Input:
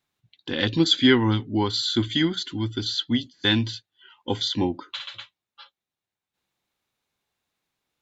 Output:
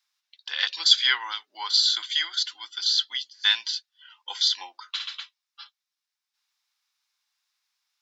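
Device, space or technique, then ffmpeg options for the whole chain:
headphones lying on a table: -af "highpass=frequency=1000:width=0.5412,highpass=frequency=1000:width=1.3066,equalizer=frequency=5200:width_type=o:width=0.55:gain=11.5"

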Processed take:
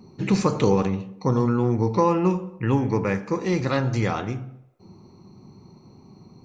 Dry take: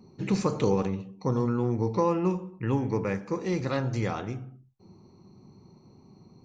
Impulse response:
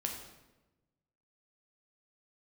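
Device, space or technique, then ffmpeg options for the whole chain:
filtered reverb send: -filter_complex "[0:a]asplit=2[link_01][link_02];[link_02]highpass=frequency=440:width=0.5412,highpass=frequency=440:width=1.3066,lowpass=5200[link_03];[1:a]atrim=start_sample=2205[link_04];[link_03][link_04]afir=irnorm=-1:irlink=0,volume=-15dB[link_05];[link_01][link_05]amix=inputs=2:normalize=0,volume=5.5dB"

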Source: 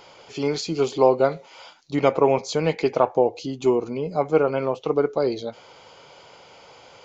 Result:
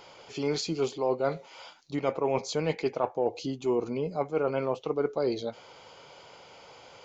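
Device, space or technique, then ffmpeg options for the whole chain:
compression on the reversed sound: -af "areverse,acompressor=threshold=-20dB:ratio=10,areverse,volume=-3dB"

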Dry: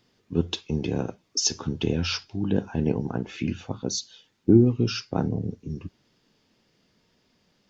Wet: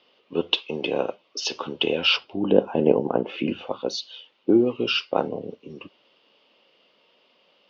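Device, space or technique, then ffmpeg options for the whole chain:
phone earpiece: -filter_complex "[0:a]asettb=1/sr,asplit=3[link_01][link_02][link_03];[link_01]atrim=end=2.164[link_04];[link_02]atrim=start=2.16:end=3.67,asetpts=PTS-STARTPTS,afade=type=in:duration=0.004:curve=qsin,afade=type=out:start_time=1.506:duration=0.004:curve=qsin,tiltshelf=frequency=1100:gain=8[link_05];[link_03]atrim=start=3.666[link_06];[link_04][link_05]acrossfade=duration=0.004:curve1=hsin:curve2=qsin[link_07];[link_07][link_06]acrossfade=duration=0.004:curve1=qsin:curve2=hsin,highpass=450,equalizer=frequency=550:width_type=q:width=4:gain=8,equalizer=frequency=1100:width_type=q:width=4:gain=4,equalizer=frequency=1700:width_type=q:width=4:gain=-7,equalizer=frequency=2900:width_type=q:width=4:gain=10,lowpass=frequency=4000:width=0.5412,lowpass=frequency=4000:width=1.3066,volume=6dB"

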